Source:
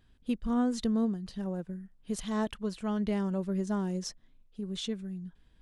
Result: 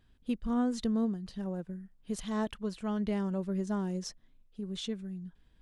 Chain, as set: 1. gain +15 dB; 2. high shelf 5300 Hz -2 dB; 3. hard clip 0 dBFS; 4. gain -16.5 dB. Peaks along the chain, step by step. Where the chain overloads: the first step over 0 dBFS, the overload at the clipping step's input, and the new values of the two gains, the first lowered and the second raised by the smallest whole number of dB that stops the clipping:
-4.0, -4.0, -4.0, -20.5 dBFS; no overload

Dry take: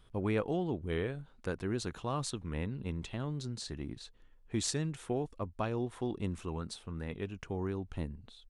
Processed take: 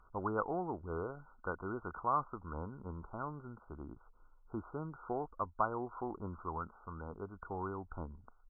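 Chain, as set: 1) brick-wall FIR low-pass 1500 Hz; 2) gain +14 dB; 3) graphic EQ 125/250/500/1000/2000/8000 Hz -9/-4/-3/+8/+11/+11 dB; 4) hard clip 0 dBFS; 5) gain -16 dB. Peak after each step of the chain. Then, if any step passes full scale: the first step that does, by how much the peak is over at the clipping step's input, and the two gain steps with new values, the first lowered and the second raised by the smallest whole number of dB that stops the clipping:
-20.0, -6.0, -2.0, -2.0, -18.0 dBFS; no overload

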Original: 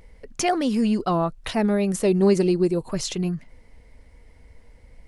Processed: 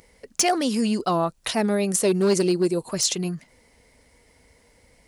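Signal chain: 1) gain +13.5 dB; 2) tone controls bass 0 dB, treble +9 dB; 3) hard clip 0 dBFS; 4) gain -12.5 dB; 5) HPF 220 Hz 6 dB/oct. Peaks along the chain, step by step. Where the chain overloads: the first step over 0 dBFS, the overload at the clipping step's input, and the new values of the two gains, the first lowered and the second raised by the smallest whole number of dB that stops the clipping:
+5.0, +8.5, 0.0, -12.5, -10.0 dBFS; step 1, 8.5 dB; step 1 +4.5 dB, step 4 -3.5 dB

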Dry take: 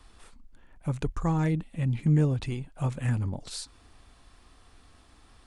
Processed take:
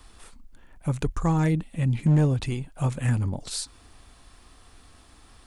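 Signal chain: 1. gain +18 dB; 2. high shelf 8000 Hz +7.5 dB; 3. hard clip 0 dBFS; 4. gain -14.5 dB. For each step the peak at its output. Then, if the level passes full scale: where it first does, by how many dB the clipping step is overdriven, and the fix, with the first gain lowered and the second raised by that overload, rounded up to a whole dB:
+4.5, +4.5, 0.0, -14.5 dBFS; step 1, 4.5 dB; step 1 +13 dB, step 4 -9.5 dB

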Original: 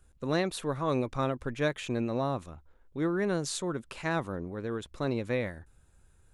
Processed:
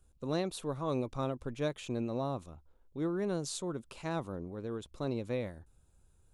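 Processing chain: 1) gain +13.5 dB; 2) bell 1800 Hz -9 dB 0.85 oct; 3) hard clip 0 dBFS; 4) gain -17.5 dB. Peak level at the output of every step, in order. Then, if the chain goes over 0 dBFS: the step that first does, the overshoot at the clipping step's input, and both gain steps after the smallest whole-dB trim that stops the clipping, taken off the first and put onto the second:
-2.5, -3.0, -3.0, -20.5 dBFS; no overload

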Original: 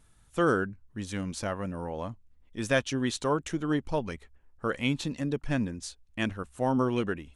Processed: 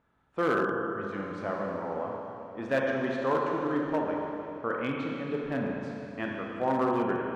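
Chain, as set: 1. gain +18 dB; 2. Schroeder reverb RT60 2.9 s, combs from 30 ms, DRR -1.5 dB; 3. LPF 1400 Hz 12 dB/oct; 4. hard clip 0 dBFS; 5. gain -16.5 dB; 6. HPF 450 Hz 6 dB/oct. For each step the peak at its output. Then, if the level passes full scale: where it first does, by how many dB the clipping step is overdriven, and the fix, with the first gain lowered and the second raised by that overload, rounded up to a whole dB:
+6.0, +8.0, +7.0, 0.0, -16.5, -14.5 dBFS; step 1, 7.0 dB; step 1 +11 dB, step 5 -9.5 dB

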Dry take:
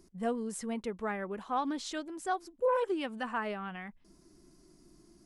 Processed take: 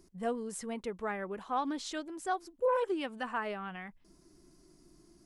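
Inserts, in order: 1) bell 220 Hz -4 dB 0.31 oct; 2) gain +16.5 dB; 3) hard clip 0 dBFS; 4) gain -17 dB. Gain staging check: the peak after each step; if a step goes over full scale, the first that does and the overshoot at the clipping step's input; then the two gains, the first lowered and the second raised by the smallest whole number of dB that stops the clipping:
-20.0, -3.5, -3.5, -20.5 dBFS; no overload

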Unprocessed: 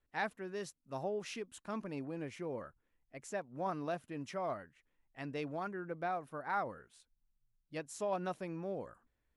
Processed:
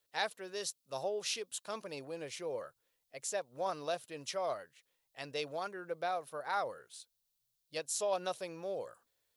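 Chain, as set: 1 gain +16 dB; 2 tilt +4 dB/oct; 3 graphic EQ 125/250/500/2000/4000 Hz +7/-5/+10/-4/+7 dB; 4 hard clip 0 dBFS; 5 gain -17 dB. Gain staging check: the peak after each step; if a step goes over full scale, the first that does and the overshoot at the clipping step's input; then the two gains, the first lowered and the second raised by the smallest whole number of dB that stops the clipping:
-8.0, -3.5, -1.5, -1.5, -18.5 dBFS; no overload

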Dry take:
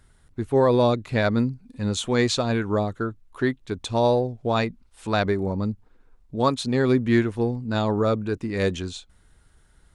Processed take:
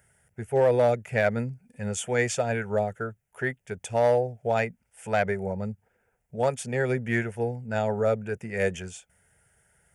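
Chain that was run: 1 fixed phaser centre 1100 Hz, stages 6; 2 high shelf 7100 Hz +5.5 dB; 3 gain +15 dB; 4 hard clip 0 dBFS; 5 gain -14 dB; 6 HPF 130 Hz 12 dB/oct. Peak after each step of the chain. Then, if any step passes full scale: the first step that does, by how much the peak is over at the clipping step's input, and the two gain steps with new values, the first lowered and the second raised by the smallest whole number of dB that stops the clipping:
-10.5, -10.5, +4.5, 0.0, -14.0, -11.0 dBFS; step 3, 4.5 dB; step 3 +10 dB, step 5 -9 dB

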